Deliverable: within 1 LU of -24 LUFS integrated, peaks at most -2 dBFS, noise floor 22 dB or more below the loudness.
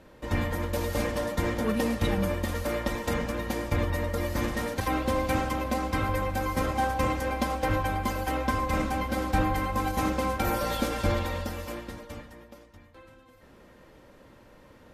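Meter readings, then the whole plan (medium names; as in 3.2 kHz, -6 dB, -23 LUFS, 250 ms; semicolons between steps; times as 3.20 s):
loudness -29.0 LUFS; peak level -12.0 dBFS; loudness target -24.0 LUFS
-> trim +5 dB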